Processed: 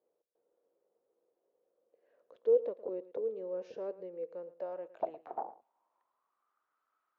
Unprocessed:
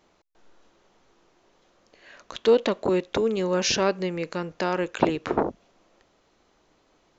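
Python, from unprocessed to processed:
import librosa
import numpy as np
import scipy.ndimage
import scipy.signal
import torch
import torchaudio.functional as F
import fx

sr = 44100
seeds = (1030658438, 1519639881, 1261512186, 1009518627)

y = fx.filter_sweep_bandpass(x, sr, from_hz=490.0, to_hz=1300.0, start_s=4.28, end_s=6.65, q=7.2)
y = y + 10.0 ** (-17.0 / 20.0) * np.pad(y, (int(112 * sr / 1000.0), 0))[:len(y)]
y = F.gain(torch.from_numpy(y), -5.5).numpy()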